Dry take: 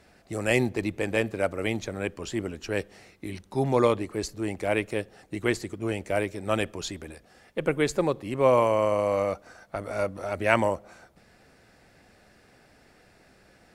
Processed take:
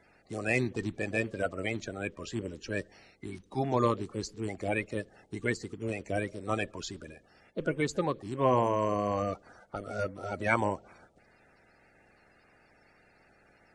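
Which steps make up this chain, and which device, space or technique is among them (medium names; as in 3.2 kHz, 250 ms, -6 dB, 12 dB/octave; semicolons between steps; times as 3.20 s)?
clip after many re-uploads (low-pass 8.5 kHz 24 dB/octave; coarse spectral quantiser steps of 30 dB); trim -4.5 dB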